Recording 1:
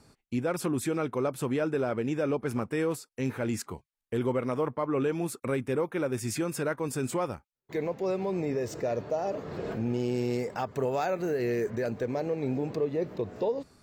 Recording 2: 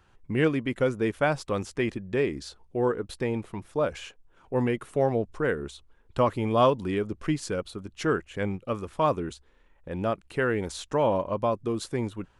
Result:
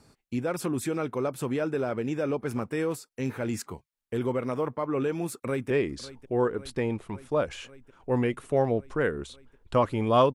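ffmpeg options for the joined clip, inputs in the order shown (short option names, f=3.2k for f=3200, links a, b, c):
-filter_complex "[0:a]apad=whole_dur=10.34,atrim=end=10.34,atrim=end=5.702[a];[1:a]atrim=start=2.138:end=6.78[b];[a][b]acrossfade=d=0.004:c1=hsin:c2=hsin,asplit=2[c][d];[d]afade=t=in:st=5.34:d=0.01,afade=t=out:st=5.7:d=0.01,aecho=0:1:550|1100|1650|2200|2750|3300|3850|4400|4950|5500|6050|6600:0.149624|0.119699|0.0957591|0.0766073|0.0612858|0.0490286|0.0392229|0.0313783|0.0251027|0.0200821|0.0160657|0.0128526[e];[c][e]amix=inputs=2:normalize=0"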